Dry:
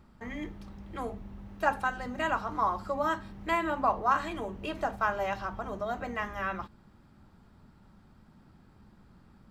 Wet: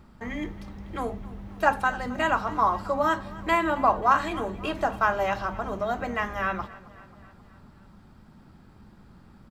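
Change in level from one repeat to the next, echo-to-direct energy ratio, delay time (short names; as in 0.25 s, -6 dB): -4.5 dB, -18.0 dB, 0.268 s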